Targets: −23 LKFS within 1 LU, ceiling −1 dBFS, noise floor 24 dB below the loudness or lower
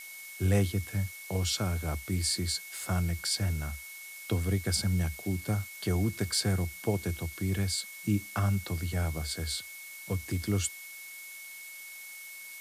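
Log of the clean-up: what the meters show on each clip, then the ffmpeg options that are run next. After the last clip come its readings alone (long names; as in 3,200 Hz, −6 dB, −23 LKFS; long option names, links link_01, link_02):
interfering tone 2,200 Hz; level of the tone −45 dBFS; background noise floor −46 dBFS; target noise floor −56 dBFS; integrated loudness −31.5 LKFS; sample peak −13.0 dBFS; target loudness −23.0 LKFS
→ -af "bandreject=frequency=2200:width=30"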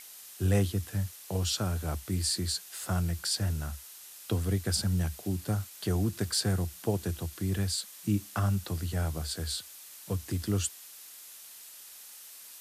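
interfering tone none found; background noise floor −49 dBFS; target noise floor −56 dBFS
→ -af "afftdn=noise_reduction=7:noise_floor=-49"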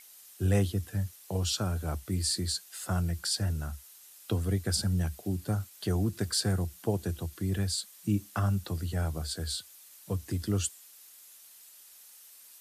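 background noise floor −54 dBFS; target noise floor −56 dBFS
→ -af "afftdn=noise_reduction=6:noise_floor=-54"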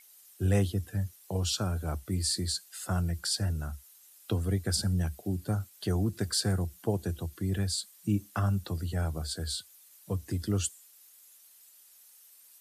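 background noise floor −58 dBFS; integrated loudness −31.5 LKFS; sample peak −13.5 dBFS; target loudness −23.0 LKFS
→ -af "volume=8.5dB"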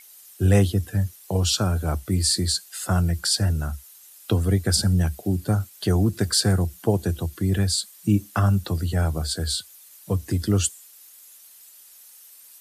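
integrated loudness −23.0 LKFS; sample peak −5.0 dBFS; background noise floor −49 dBFS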